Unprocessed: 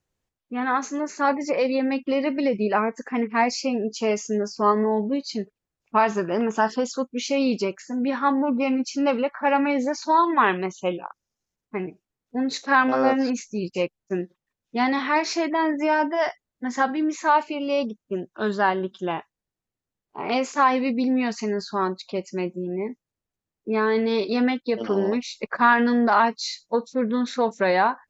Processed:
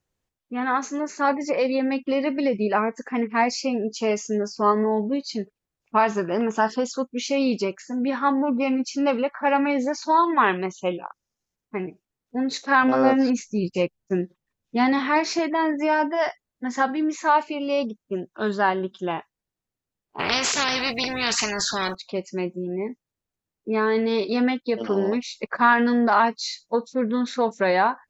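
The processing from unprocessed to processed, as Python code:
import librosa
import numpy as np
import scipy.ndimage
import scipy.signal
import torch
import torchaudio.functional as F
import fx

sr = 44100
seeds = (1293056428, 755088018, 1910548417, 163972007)

y = fx.low_shelf(x, sr, hz=250.0, db=7.0, at=(12.83, 15.39))
y = fx.spectral_comp(y, sr, ratio=4.0, at=(20.19, 21.95))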